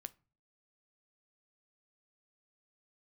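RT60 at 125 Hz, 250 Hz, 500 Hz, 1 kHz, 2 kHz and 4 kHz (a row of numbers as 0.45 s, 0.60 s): 0.60 s, 0.55 s, 0.40 s, 0.35 s, 0.30 s, 0.25 s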